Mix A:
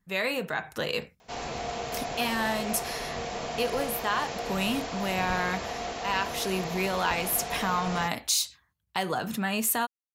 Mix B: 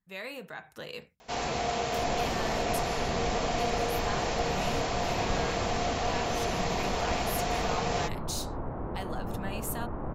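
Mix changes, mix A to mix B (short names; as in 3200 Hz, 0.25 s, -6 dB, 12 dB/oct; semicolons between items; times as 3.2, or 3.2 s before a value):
speech -11.0 dB; first sound +3.5 dB; second sound: unmuted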